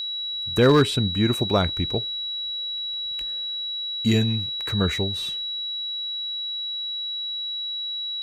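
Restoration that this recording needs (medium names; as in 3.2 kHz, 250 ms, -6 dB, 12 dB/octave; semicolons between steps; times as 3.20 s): clip repair -9.5 dBFS; de-click; band-stop 3.9 kHz, Q 30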